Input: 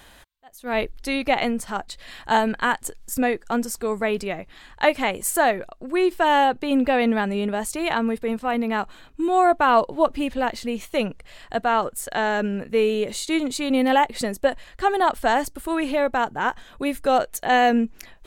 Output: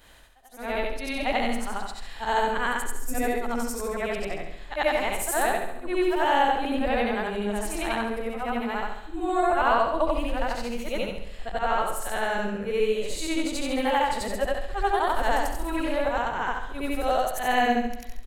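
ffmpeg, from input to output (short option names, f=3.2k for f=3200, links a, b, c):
-af "afftfilt=real='re':imag='-im':win_size=8192:overlap=0.75,aecho=1:1:68|136|204|272|340|408|476:0.398|0.219|0.12|0.0662|0.0364|0.02|0.011,asubboost=boost=8:cutoff=63"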